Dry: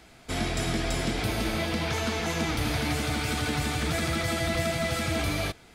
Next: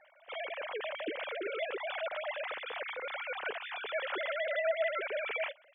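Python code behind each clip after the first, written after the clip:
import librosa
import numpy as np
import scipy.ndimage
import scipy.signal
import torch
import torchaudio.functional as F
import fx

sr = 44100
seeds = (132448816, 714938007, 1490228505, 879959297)

y = fx.sine_speech(x, sr)
y = y * librosa.db_to_amplitude(-8.5)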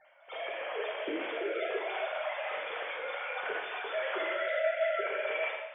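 y = fx.lowpass(x, sr, hz=2300.0, slope=6)
y = fx.rev_gated(y, sr, seeds[0], gate_ms=320, shape='falling', drr_db=-4.0)
y = y * librosa.db_to_amplitude(-1.5)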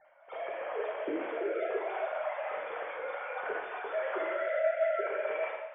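y = scipy.signal.sosfilt(scipy.signal.butter(2, 1500.0, 'lowpass', fs=sr, output='sos'), x)
y = y * librosa.db_to_amplitude(1.5)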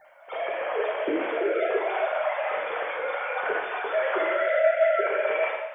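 y = fx.high_shelf(x, sr, hz=3000.0, db=8.0)
y = y * librosa.db_to_amplitude(7.5)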